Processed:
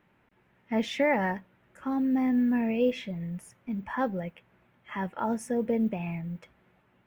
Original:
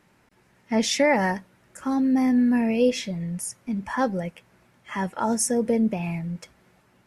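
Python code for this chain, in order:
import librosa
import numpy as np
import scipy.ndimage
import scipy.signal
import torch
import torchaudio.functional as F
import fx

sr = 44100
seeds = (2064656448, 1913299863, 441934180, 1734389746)

y = fx.mod_noise(x, sr, seeds[0], snr_db=35)
y = fx.band_shelf(y, sr, hz=7100.0, db=-15.0, octaves=1.7)
y = y * librosa.db_to_amplitude(-5.0)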